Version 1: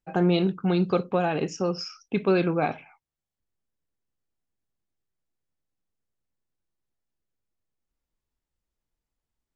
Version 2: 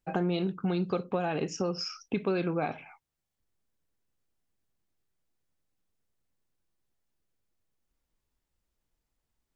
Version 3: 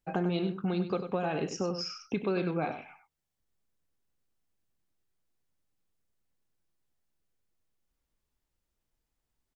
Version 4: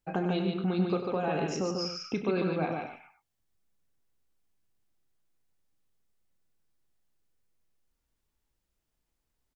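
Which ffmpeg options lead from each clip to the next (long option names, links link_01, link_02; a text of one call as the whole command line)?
ffmpeg -i in.wav -af "acompressor=threshold=-33dB:ratio=3,volume=3.5dB" out.wav
ffmpeg -i in.wav -af "aecho=1:1:97:0.335,volume=-1.5dB" out.wav
ffmpeg -i in.wav -af "aecho=1:1:32.07|145.8:0.251|0.631" out.wav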